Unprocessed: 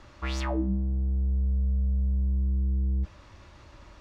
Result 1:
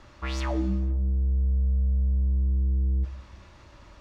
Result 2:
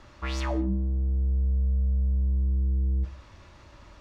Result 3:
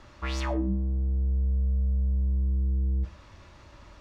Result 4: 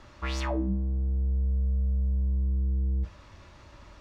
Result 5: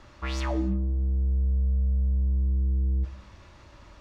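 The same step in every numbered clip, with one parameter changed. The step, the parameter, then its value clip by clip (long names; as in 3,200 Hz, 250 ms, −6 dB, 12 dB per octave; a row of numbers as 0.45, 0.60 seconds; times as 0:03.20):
reverb whose tail is shaped and stops, gate: 500, 220, 150, 90, 330 milliseconds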